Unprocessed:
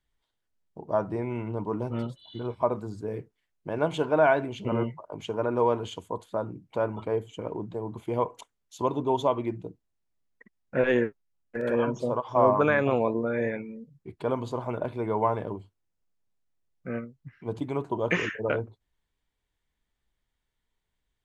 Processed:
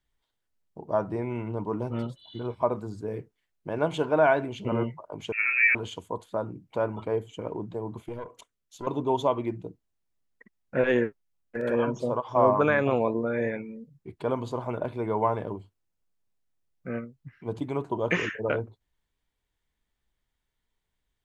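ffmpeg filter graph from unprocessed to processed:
-filter_complex "[0:a]asettb=1/sr,asplit=3[a][b][c];[a]atrim=end=5.324[d];[b]atrim=start=5.32:end=5.75,asetpts=PTS-STARTPTS,afade=t=in:d=0.004:c=qsin,afade=t=out:st=0.426:d=0.004:c=qsin,lowpass=f=2.4k:t=q:w=0.5098,lowpass=f=2.4k:t=q:w=0.6013,lowpass=f=2.4k:t=q:w=0.9,lowpass=f=2.4k:t=q:w=2.563,afreqshift=-2800,asplit=2[e][f];[f]adelay=30,volume=-4dB[g];[e][g]amix=inputs=2:normalize=0,atrim=end_sample=18963[h];[c]atrim=start=5.746[i];[d][h]acrossfade=d=0.004:c1=hsin:c2=qsin[j];[j][i]acrossfade=d=0.004:c1=qsin:c2=hsin,asettb=1/sr,asplit=3[k][l][m];[k]atrim=end=8.024[n];[l]atrim=start=8.02:end=8.87,asetpts=PTS-STARTPTS,afade=t=in:d=0.004:c=qsin,afade=t=out:st=0.846:d=0.004:c=qsin,equalizer=f=850:t=o:w=0.26:g=-11.5,acompressor=threshold=-29dB:ratio=3:attack=3.2:release=140:knee=1:detection=peak,aeval=exprs='(tanh(17.8*val(0)+0.6)-tanh(0.6))/17.8':c=same[o];[m]atrim=start=8.866[p];[n][o]acrossfade=d=0.004:c1=hsin:c2=qsin[q];[q][p]acrossfade=d=0.004:c1=qsin:c2=hsin"

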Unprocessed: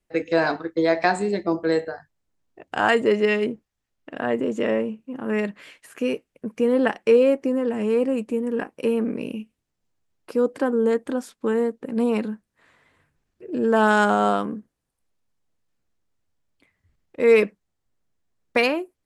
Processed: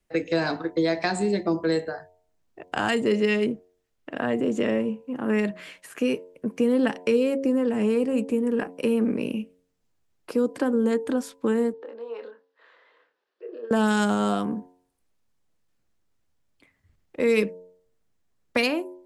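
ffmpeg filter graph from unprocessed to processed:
-filter_complex "[0:a]asettb=1/sr,asplit=3[a][b][c];[a]atrim=end=11.734[d];[b]atrim=start=11.73:end=13.71,asetpts=PTS-STARTPTS,afade=t=in:d=0.004:c=qsin,afade=t=out:st=1.976:d=0.004:c=qsin,acompressor=threshold=-34dB:ratio=8:attack=3.2:release=140:knee=1:detection=peak,highpass=f=420:w=0.5412,highpass=f=420:w=1.3066,equalizer=f=480:t=q:w=4:g=6,equalizer=f=710:t=q:w=4:g=-5,equalizer=f=2.3k:t=q:w=4:g=-7,lowpass=f=4.4k:w=0.5412,lowpass=f=4.4k:w=1.3066,asplit=2[e][f];[f]adelay=26,volume=-5dB[g];[e][g]amix=inputs=2:normalize=0,atrim=end_sample=87318[h];[c]atrim=start=13.706[i];[d][h]acrossfade=d=0.004:c1=hsin:c2=qsin[j];[j][i]acrossfade=d=0.004:c1=qsin:c2=hsin,bandreject=f=90.41:t=h:w=4,bandreject=f=180.82:t=h:w=4,bandreject=f=271.23:t=h:w=4,bandreject=f=361.64:t=h:w=4,bandreject=f=452.05:t=h:w=4,bandreject=f=542.46:t=h:w=4,bandreject=f=632.87:t=h:w=4,bandreject=f=723.28:t=h:w=4,bandreject=f=813.69:t=h:w=4,bandreject=f=904.1:t=h:w=4,bandreject=f=994.51:t=h:w=4,acrossover=split=290|3000[k][l][m];[l]acompressor=threshold=-28dB:ratio=4[n];[k][n][m]amix=inputs=3:normalize=0,volume=2.5dB"

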